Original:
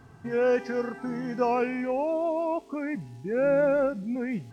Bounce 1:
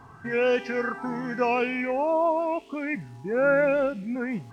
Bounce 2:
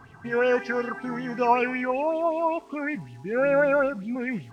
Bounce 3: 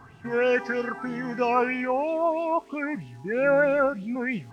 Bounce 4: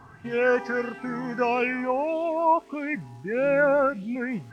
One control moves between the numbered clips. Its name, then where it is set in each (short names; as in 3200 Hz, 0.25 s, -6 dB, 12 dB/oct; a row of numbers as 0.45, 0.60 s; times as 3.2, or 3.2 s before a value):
LFO bell, rate: 0.91, 5.3, 3.1, 1.6 Hz